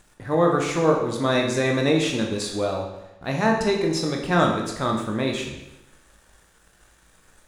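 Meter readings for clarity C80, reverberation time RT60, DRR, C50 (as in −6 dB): 6.5 dB, 0.95 s, 0.5 dB, 4.5 dB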